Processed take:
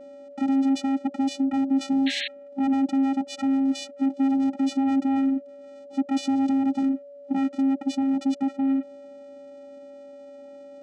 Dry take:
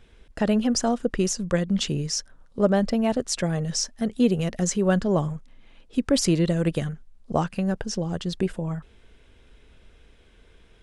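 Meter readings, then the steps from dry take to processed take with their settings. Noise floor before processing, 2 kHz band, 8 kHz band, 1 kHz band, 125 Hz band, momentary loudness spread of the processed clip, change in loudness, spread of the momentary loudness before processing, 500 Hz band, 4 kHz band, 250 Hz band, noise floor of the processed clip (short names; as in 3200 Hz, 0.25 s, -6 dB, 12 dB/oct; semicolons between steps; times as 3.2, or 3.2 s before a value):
-55 dBFS, -2.5 dB, under -10 dB, +1.0 dB, under -25 dB, 22 LU, 0.0 dB, 9 LU, -12.5 dB, -4.0 dB, +3.5 dB, -44 dBFS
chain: in parallel at +2 dB: compressor, threshold -34 dBFS, peak gain reduction 18 dB; on the sum: hard clip -22.5 dBFS, distortion -7 dB; vocoder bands 4, square 270 Hz; whine 570 Hz -45 dBFS; painted sound noise, 2.06–2.28, 1600–4300 Hz -33 dBFS; gain +3.5 dB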